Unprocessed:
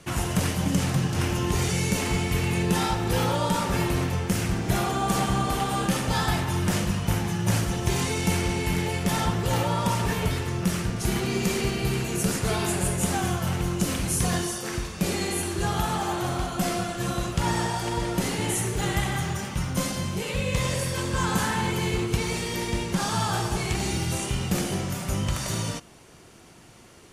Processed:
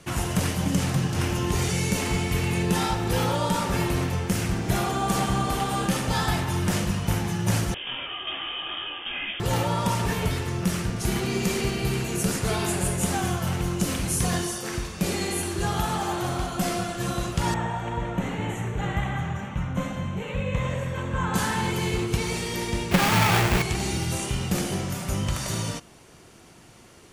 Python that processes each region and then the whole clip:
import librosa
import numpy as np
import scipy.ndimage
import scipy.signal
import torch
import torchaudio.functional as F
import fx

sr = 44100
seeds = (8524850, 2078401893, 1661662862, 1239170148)

y = fx.chain(x, sr, fx.highpass(hz=240.0, slope=12),
    fx.freq_invert(carrier_hz=3400),
    fx.detune_double(cents=39), at=(7.74, 9.4))
y = fx.chain(y, sr, fx.moving_average(points=9),
    fx.peak_eq(hz=370.0, db=-7.5, octaves=0.33), at=(17.54, 21.34))
y = fx.chain(y, sr, fx.halfwave_hold(),
    fx.peak_eq(hz=2300.0, db=7.5, octaves=0.93),
    fx.resample_bad(factor=2, down='none', up='hold'), at=(22.91, 23.62))